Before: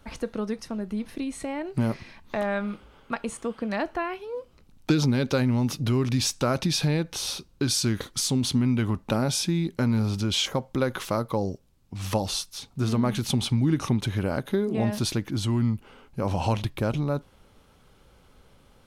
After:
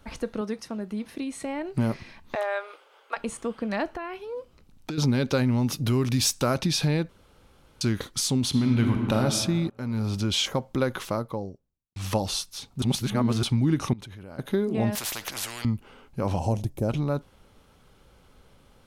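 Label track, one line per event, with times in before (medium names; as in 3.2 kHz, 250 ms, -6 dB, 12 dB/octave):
0.410000	1.450000	high-pass 150 Hz 6 dB/octave
2.350000	3.170000	inverse Chebyshev high-pass stop band from 220 Hz
3.860000	4.980000	compression 5:1, threshold -30 dBFS
5.720000	6.540000	treble shelf 9.5 kHz +10.5 dB
7.090000	7.810000	room tone
8.490000	9.180000	reverb throw, RT60 2 s, DRR 2.5 dB
9.700000	10.160000	fade in, from -20 dB
10.850000	11.960000	studio fade out
12.820000	13.430000	reverse
13.930000	14.390000	level held to a coarse grid steps of 21 dB
14.950000	15.650000	spectrum-flattening compressor 10:1
16.390000	16.890000	high-order bell 2.1 kHz -15 dB 2.4 oct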